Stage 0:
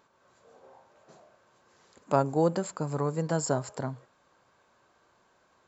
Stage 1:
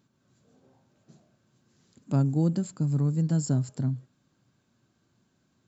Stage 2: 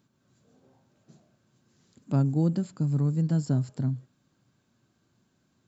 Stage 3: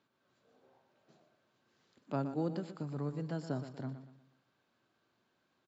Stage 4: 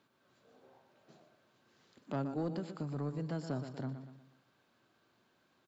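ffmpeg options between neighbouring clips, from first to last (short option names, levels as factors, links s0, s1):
-af "equalizer=f=125:t=o:w=1:g=11,equalizer=f=250:t=o:w=1:g=9,equalizer=f=500:t=o:w=1:g=-9,equalizer=f=1000:t=o:w=1:g=-11,equalizer=f=2000:t=o:w=1:g=-5,volume=0.75"
-filter_complex "[0:a]acrossover=split=5500[s0][s1];[s1]acompressor=threshold=0.001:ratio=4:attack=1:release=60[s2];[s0][s2]amix=inputs=2:normalize=0"
-filter_complex "[0:a]acrossover=split=360 4700:gain=0.158 1 0.0891[s0][s1][s2];[s0][s1][s2]amix=inputs=3:normalize=0,asplit=2[s3][s4];[s4]aecho=0:1:120|240|360|480:0.282|0.11|0.0429|0.0167[s5];[s3][s5]amix=inputs=2:normalize=0,volume=0.891"
-filter_complex "[0:a]asplit=2[s0][s1];[s1]acompressor=threshold=0.00562:ratio=6,volume=1.06[s2];[s0][s2]amix=inputs=2:normalize=0,asoftclip=type=tanh:threshold=0.0501,volume=0.841"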